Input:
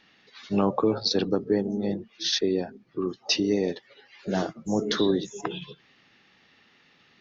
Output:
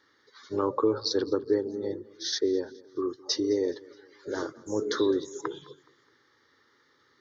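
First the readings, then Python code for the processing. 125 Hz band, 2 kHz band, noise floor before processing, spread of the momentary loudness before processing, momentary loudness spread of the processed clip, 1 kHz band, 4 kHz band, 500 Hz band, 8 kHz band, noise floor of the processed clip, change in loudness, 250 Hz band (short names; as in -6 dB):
-11.0 dB, -5.0 dB, -61 dBFS, 11 LU, 11 LU, -3.0 dB, -5.5 dB, -0.5 dB, n/a, -66 dBFS, -3.0 dB, -4.5 dB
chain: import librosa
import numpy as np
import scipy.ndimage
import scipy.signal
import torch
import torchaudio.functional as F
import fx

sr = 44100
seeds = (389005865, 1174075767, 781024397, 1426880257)

p1 = scipy.signal.sosfilt(scipy.signal.butter(2, 82.0, 'highpass', fs=sr, output='sos'), x)
p2 = fx.fixed_phaser(p1, sr, hz=710.0, stages=6)
y = p2 + fx.echo_feedback(p2, sr, ms=210, feedback_pct=44, wet_db=-22.5, dry=0)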